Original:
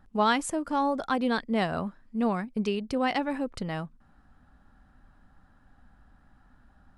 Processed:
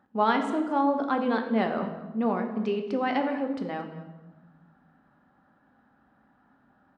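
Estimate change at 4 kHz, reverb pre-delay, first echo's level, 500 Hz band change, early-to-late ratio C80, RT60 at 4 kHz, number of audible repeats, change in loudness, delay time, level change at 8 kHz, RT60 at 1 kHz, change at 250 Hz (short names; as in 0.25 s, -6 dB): -5.0 dB, 3 ms, -18.5 dB, +2.0 dB, 9.5 dB, 0.75 s, 1, +1.0 dB, 0.225 s, under -15 dB, 1.0 s, +1.5 dB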